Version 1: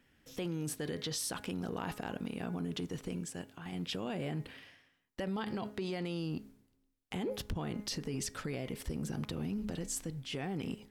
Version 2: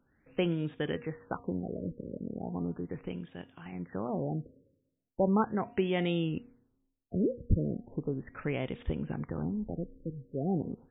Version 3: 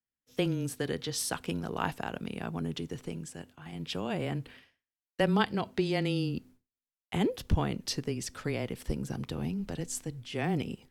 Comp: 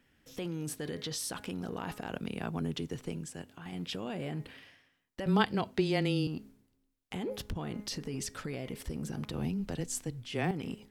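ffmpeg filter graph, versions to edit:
-filter_complex "[2:a]asplit=3[a][b][c];[0:a]asplit=4[d][e][f][g];[d]atrim=end=2.092[h];[a]atrim=start=2.088:end=3.492[i];[e]atrim=start=3.488:end=5.262[j];[b]atrim=start=5.258:end=6.272[k];[f]atrim=start=6.268:end=9.342[l];[c]atrim=start=9.338:end=10.512[m];[g]atrim=start=10.508[n];[h][i]acrossfade=d=0.004:c1=hsin:c2=hsin[o];[o][j]acrossfade=d=0.004:c1=hsin:c2=hsin[p];[p][k]acrossfade=d=0.004:c1=hsin:c2=hsin[q];[q][l]acrossfade=d=0.004:c1=hsin:c2=hsin[r];[r][m]acrossfade=d=0.004:c1=hsin:c2=hsin[s];[s][n]acrossfade=d=0.004:c1=hsin:c2=hsin"

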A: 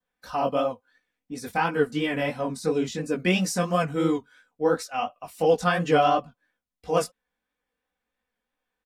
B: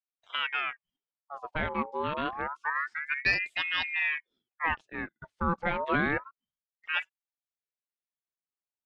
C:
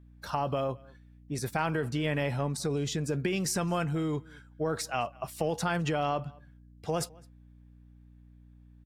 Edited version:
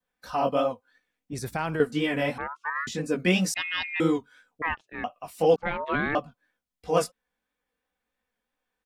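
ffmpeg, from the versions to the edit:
-filter_complex "[1:a]asplit=4[a][b][c][d];[0:a]asplit=6[e][f][g][h][i][j];[e]atrim=end=1.332[k];[2:a]atrim=start=1.328:end=1.802[l];[f]atrim=start=1.798:end=2.382[m];[a]atrim=start=2.378:end=2.872[n];[g]atrim=start=2.868:end=3.542[o];[b]atrim=start=3.538:end=4.002[p];[h]atrim=start=3.998:end=4.622[q];[c]atrim=start=4.618:end=5.042[r];[i]atrim=start=5.038:end=5.562[s];[d]atrim=start=5.558:end=6.152[t];[j]atrim=start=6.148[u];[k][l]acrossfade=d=0.004:c1=hsin:c2=hsin[v];[v][m]acrossfade=d=0.004:c1=hsin:c2=hsin[w];[w][n]acrossfade=d=0.004:c1=hsin:c2=hsin[x];[x][o]acrossfade=d=0.004:c1=hsin:c2=hsin[y];[y][p]acrossfade=d=0.004:c1=hsin:c2=hsin[z];[z][q]acrossfade=d=0.004:c1=hsin:c2=hsin[aa];[aa][r]acrossfade=d=0.004:c1=hsin:c2=hsin[ab];[ab][s]acrossfade=d=0.004:c1=hsin:c2=hsin[ac];[ac][t]acrossfade=d=0.004:c1=hsin:c2=hsin[ad];[ad][u]acrossfade=d=0.004:c1=hsin:c2=hsin"

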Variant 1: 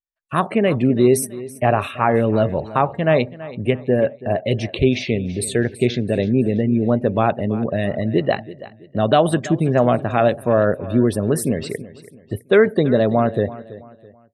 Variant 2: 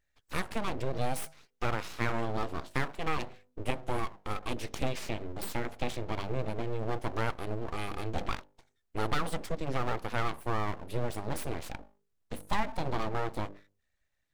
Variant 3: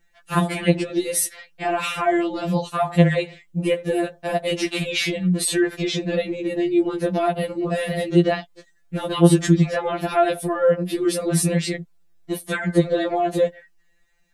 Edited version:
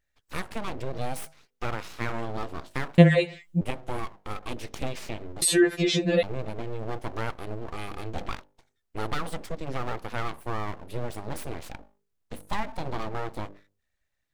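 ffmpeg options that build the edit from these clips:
-filter_complex "[2:a]asplit=2[a][b];[1:a]asplit=3[c][d][e];[c]atrim=end=2.982[f];[a]atrim=start=2.978:end=3.612[g];[d]atrim=start=3.608:end=5.422[h];[b]atrim=start=5.418:end=6.232[i];[e]atrim=start=6.228[j];[f][g]acrossfade=d=0.004:c1=hsin:c2=hsin[k];[k][h]acrossfade=d=0.004:c1=hsin:c2=hsin[l];[l][i]acrossfade=d=0.004:c1=hsin:c2=hsin[m];[m][j]acrossfade=d=0.004:c1=hsin:c2=hsin"

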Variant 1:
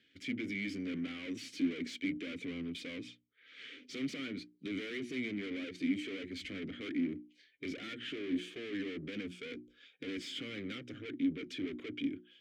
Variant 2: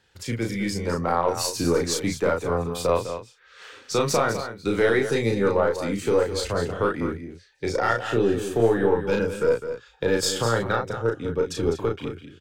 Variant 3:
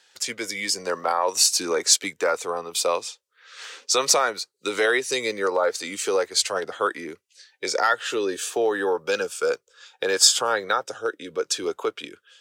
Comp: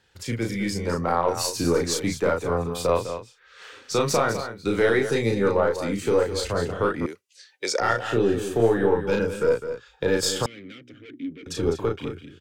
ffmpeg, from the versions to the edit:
-filter_complex "[1:a]asplit=3[a][b][c];[a]atrim=end=7.062[d];[2:a]atrim=start=7.058:end=7.802[e];[b]atrim=start=7.798:end=10.462[f];[0:a]atrim=start=10.458:end=11.462[g];[c]atrim=start=11.458[h];[d][e]acrossfade=d=0.004:c1=hsin:c2=hsin[i];[i][f]acrossfade=d=0.004:c1=hsin:c2=hsin[j];[j][g]acrossfade=d=0.004:c1=hsin:c2=hsin[k];[k][h]acrossfade=d=0.004:c1=hsin:c2=hsin"

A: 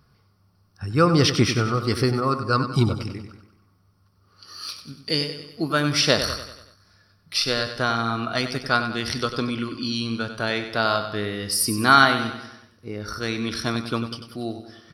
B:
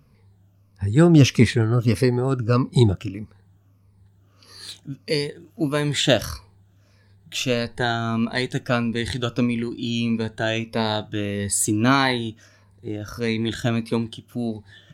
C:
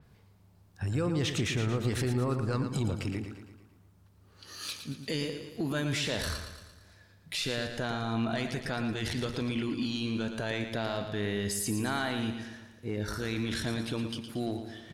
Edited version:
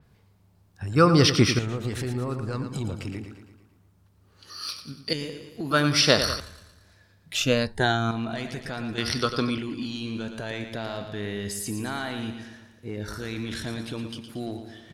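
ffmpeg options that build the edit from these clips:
-filter_complex "[0:a]asplit=4[a][b][c][d];[2:a]asplit=6[e][f][g][h][i][j];[e]atrim=end=0.962[k];[a]atrim=start=0.958:end=1.592[l];[f]atrim=start=1.588:end=4.502[m];[b]atrim=start=4.498:end=5.132[n];[g]atrim=start=5.128:end=5.712[o];[c]atrim=start=5.708:end=6.402[p];[h]atrim=start=6.398:end=7.352[q];[1:a]atrim=start=7.348:end=8.112[r];[i]atrim=start=8.108:end=8.982[s];[d]atrim=start=8.978:end=9.582[t];[j]atrim=start=9.578[u];[k][l]acrossfade=d=0.004:c1=hsin:c2=hsin[v];[v][m]acrossfade=d=0.004:c1=hsin:c2=hsin[w];[w][n]acrossfade=d=0.004:c1=hsin:c2=hsin[x];[x][o]acrossfade=d=0.004:c1=hsin:c2=hsin[y];[y][p]acrossfade=d=0.004:c1=hsin:c2=hsin[z];[z][q]acrossfade=d=0.004:c1=hsin:c2=hsin[aa];[aa][r]acrossfade=d=0.004:c1=hsin:c2=hsin[ab];[ab][s]acrossfade=d=0.004:c1=hsin:c2=hsin[ac];[ac][t]acrossfade=d=0.004:c1=hsin:c2=hsin[ad];[ad][u]acrossfade=d=0.004:c1=hsin:c2=hsin"

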